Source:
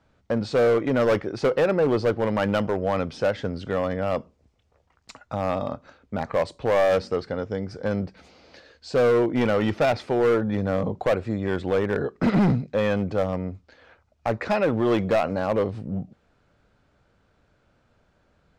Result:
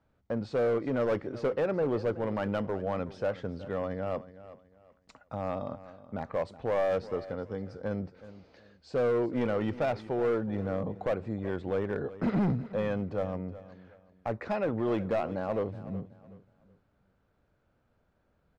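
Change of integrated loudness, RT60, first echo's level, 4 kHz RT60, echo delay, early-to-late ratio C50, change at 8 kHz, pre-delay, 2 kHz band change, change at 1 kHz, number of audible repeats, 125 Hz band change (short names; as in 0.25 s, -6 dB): -8.0 dB, none, -16.0 dB, none, 0.372 s, none, n/a, none, -10.5 dB, -8.5 dB, 2, -7.5 dB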